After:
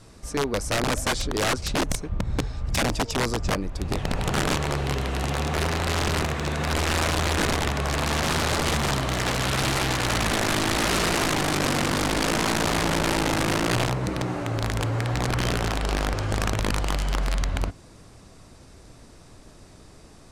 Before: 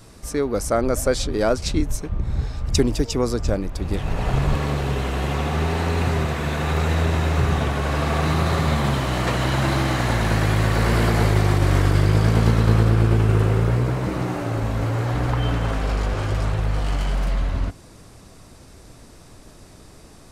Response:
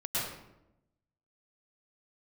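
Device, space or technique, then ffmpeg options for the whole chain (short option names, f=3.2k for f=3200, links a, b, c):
overflowing digital effects unit: -af "aeval=exprs='(mod(5.31*val(0)+1,2)-1)/5.31':c=same,lowpass=10k,volume=-3dB"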